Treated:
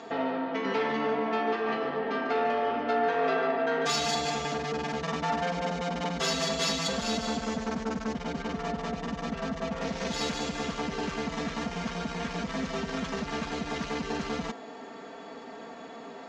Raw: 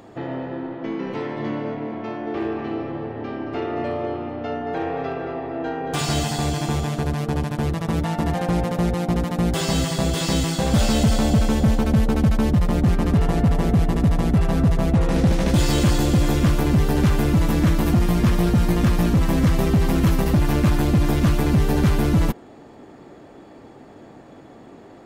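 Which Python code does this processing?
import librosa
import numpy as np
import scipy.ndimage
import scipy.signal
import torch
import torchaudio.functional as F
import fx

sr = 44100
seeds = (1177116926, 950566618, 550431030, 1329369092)

p1 = fx.stretch_vocoder(x, sr, factor=0.65)
p2 = scipy.signal.sosfilt(scipy.signal.butter(8, 6900.0, 'lowpass', fs=sr, output='sos'), p1)
p3 = fx.over_compress(p2, sr, threshold_db=-28.0, ratio=-1.0)
p4 = p2 + (p3 * librosa.db_to_amplitude(1.0))
p5 = 10.0 ** (-14.0 / 20.0) * np.tanh(p4 / 10.0 ** (-14.0 / 20.0))
p6 = fx.highpass(p5, sr, hz=670.0, slope=6)
p7 = p6 + 0.91 * np.pad(p6, (int(4.4 * sr / 1000.0), 0))[:len(p6)]
y = p7 * librosa.db_to_amplitude(-5.5)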